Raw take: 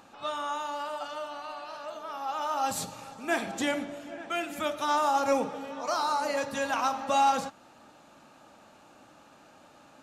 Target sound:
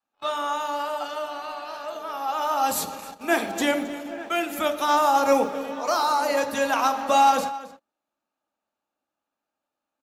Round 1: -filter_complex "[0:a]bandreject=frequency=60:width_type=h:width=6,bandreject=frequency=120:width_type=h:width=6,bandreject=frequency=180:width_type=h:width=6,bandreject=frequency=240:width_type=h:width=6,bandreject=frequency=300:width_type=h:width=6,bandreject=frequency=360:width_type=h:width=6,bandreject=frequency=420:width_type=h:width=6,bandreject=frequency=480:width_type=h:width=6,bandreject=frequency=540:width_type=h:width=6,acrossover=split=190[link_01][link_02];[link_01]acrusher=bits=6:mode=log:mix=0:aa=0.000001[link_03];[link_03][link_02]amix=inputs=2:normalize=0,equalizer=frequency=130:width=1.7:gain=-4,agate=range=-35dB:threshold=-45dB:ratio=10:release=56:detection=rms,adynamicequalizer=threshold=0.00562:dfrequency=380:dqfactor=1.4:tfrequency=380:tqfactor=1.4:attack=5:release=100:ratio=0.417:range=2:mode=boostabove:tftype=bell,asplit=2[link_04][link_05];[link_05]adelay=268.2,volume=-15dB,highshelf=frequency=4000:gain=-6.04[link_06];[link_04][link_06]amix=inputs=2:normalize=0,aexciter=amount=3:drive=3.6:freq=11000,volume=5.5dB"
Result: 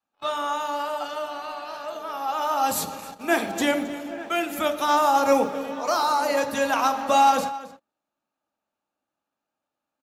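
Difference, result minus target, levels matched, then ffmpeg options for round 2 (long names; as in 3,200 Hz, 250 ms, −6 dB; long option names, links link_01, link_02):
125 Hz band +3.0 dB
-filter_complex "[0:a]bandreject=frequency=60:width_type=h:width=6,bandreject=frequency=120:width_type=h:width=6,bandreject=frequency=180:width_type=h:width=6,bandreject=frequency=240:width_type=h:width=6,bandreject=frequency=300:width_type=h:width=6,bandreject=frequency=360:width_type=h:width=6,bandreject=frequency=420:width_type=h:width=6,bandreject=frequency=480:width_type=h:width=6,bandreject=frequency=540:width_type=h:width=6,acrossover=split=190[link_01][link_02];[link_01]acrusher=bits=6:mode=log:mix=0:aa=0.000001[link_03];[link_03][link_02]amix=inputs=2:normalize=0,equalizer=frequency=130:width=1.7:gain=-10.5,agate=range=-35dB:threshold=-45dB:ratio=10:release=56:detection=rms,adynamicequalizer=threshold=0.00562:dfrequency=380:dqfactor=1.4:tfrequency=380:tqfactor=1.4:attack=5:release=100:ratio=0.417:range=2:mode=boostabove:tftype=bell,asplit=2[link_04][link_05];[link_05]adelay=268.2,volume=-15dB,highshelf=frequency=4000:gain=-6.04[link_06];[link_04][link_06]amix=inputs=2:normalize=0,aexciter=amount=3:drive=3.6:freq=11000,volume=5.5dB"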